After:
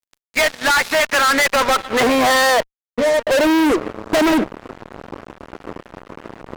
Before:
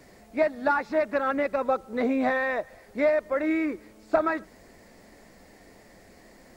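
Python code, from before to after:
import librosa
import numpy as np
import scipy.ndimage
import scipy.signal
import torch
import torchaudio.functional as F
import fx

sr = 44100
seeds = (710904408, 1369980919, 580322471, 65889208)

y = fx.filter_sweep_bandpass(x, sr, from_hz=2900.0, to_hz=350.0, start_s=0.9, end_s=4.22, q=1.4)
y = fx.octave_resonator(y, sr, note='A#', decay_s=0.13, at=(2.6, 3.27))
y = fx.fuzz(y, sr, gain_db=48.0, gate_db=-54.0)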